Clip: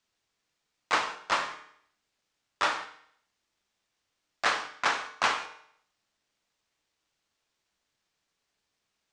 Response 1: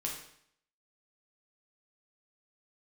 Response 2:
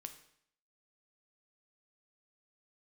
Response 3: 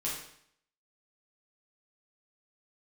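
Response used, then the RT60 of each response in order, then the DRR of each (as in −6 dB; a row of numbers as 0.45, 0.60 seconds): 2; 0.65, 0.65, 0.65 seconds; −2.0, 7.0, −7.0 decibels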